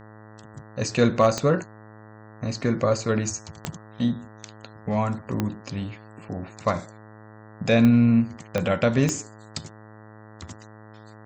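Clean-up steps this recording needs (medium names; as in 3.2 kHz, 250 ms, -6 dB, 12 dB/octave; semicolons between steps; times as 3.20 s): clip repair -8 dBFS; de-click; de-hum 107.8 Hz, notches 18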